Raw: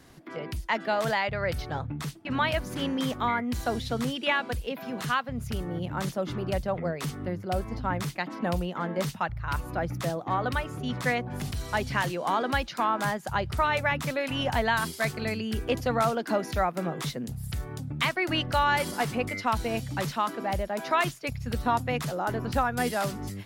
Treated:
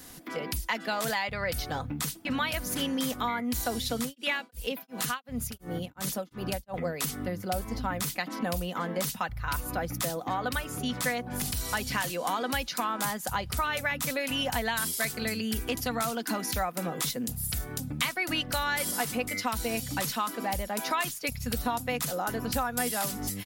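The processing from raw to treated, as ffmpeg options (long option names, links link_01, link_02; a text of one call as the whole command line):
ffmpeg -i in.wav -filter_complex "[0:a]asettb=1/sr,asplit=3[link_01][link_02][link_03];[link_01]atrim=end=3.984[link_04];[link_02]atrim=start=3.98:end=6.74,asetpts=PTS-STARTPTS,afade=type=in:duration=0.004:curve=qsin,afade=type=out:start_time=2.756:duration=0.004:curve=qsin,tremolo=f=2.8:d=1[link_05];[link_03]atrim=start=6.736[link_06];[link_04][link_05]acrossfade=duration=0.004:curve1=hsin:curve2=qsin[link_07];[link_07][link_06]acrossfade=duration=0.004:curve1=qsin:curve2=hsin,asettb=1/sr,asplit=3[link_08][link_09][link_10];[link_08]atrim=end=15.584[link_11];[link_09]atrim=start=15.58:end=16.56,asetpts=PTS-STARTPTS,afade=type=in:duration=0.004:curve=qsin,afade=type=out:start_time=0.976:duration=0.004:curve=qsin,equalizer=frequency=540:width_type=o:width=0.45:gain=-8[link_12];[link_10]atrim=start=16.556[link_13];[link_11][link_12]acrossfade=duration=0.004:curve1=hsin:curve2=qsin[link_14];[link_14][link_13]acrossfade=duration=0.004:curve1=qsin:curve2=hsin,aemphasis=mode=production:type=75kf,aecho=1:1:4:0.39,acompressor=threshold=-31dB:ratio=2.5,volume=1.5dB" out.wav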